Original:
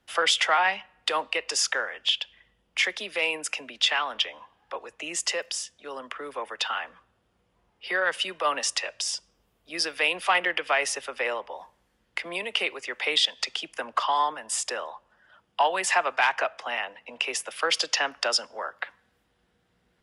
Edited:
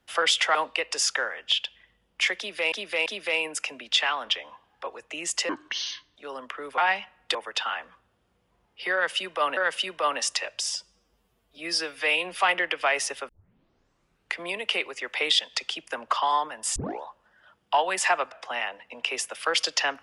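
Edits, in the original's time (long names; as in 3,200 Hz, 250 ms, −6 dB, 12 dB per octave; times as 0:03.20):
0:00.55–0:01.12: move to 0:06.39
0:02.95–0:03.29: repeat, 3 plays
0:05.38–0:05.78: play speed 59%
0:07.98–0:08.61: repeat, 2 plays
0:09.11–0:10.21: time-stretch 1.5×
0:11.15: tape start 1.08 s
0:14.62: tape start 0.27 s
0:16.18–0:16.48: remove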